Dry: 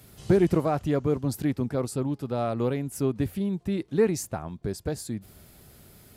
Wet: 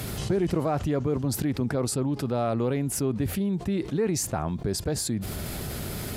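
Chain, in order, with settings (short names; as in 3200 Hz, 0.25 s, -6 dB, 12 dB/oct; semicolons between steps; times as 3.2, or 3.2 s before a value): high shelf 11000 Hz -7.5 dB; fast leveller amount 70%; gain -6 dB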